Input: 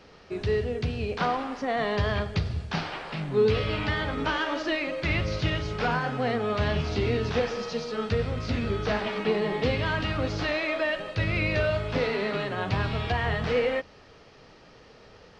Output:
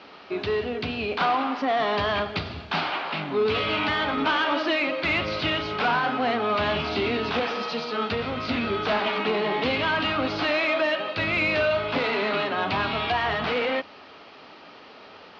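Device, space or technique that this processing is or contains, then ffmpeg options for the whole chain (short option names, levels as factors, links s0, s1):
overdrive pedal into a guitar cabinet: -filter_complex "[0:a]asplit=2[s0][s1];[s1]highpass=f=720:p=1,volume=7.08,asoftclip=type=tanh:threshold=0.237[s2];[s0][s2]amix=inputs=2:normalize=0,lowpass=f=4000:p=1,volume=0.501,highpass=91,equalizer=f=130:t=q:w=4:g=-10,equalizer=f=270:t=q:w=4:g=4,equalizer=f=480:t=q:w=4:g=-7,equalizer=f=1800:t=q:w=4:g=-6,lowpass=f=4500:w=0.5412,lowpass=f=4500:w=1.3066"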